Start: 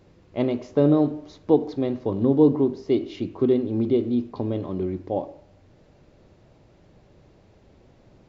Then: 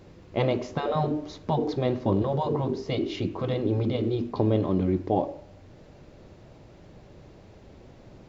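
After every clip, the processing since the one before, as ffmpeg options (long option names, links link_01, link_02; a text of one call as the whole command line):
ffmpeg -i in.wav -af "afftfilt=real='re*lt(hypot(re,im),0.398)':imag='im*lt(hypot(re,im),0.398)':win_size=1024:overlap=0.75,volume=5dB" out.wav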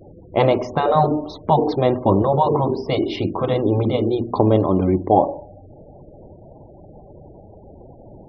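ffmpeg -i in.wav -af "equalizer=frequency=840:width_type=o:width=1.2:gain=6.5,afftfilt=real='re*gte(hypot(re,im),0.00794)':imag='im*gte(hypot(re,im),0.00794)':win_size=1024:overlap=0.75,bandreject=frequency=60:width_type=h:width=6,bandreject=frequency=120:width_type=h:width=6,bandreject=frequency=180:width_type=h:width=6,bandreject=frequency=240:width_type=h:width=6,volume=6.5dB" out.wav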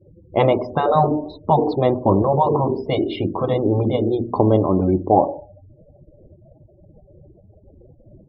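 ffmpeg -i in.wav -af "afftdn=noise_reduction=28:noise_floor=-32" out.wav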